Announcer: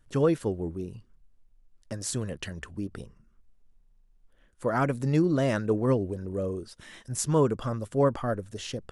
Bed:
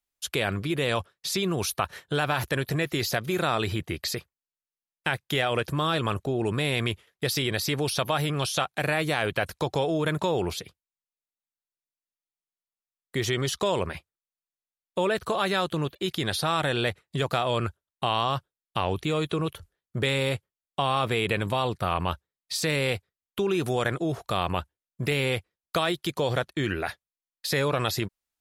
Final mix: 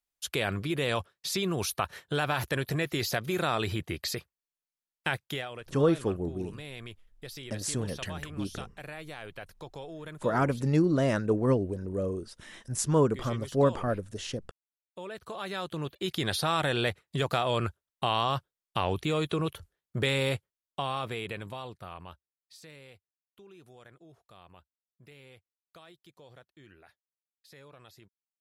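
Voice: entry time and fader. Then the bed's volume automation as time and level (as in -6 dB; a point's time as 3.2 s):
5.60 s, -0.5 dB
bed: 5.23 s -3 dB
5.54 s -16.5 dB
15.01 s -16.5 dB
16.18 s -2 dB
20.34 s -2 dB
23.02 s -27.5 dB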